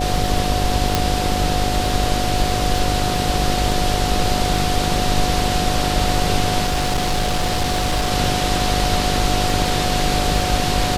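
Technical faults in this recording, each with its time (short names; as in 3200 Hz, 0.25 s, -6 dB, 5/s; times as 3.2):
buzz 50 Hz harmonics 12 -24 dBFS
crackle 12/s -22 dBFS
tone 730 Hz -23 dBFS
0.95 pop
6.65–8.12 clipped -15 dBFS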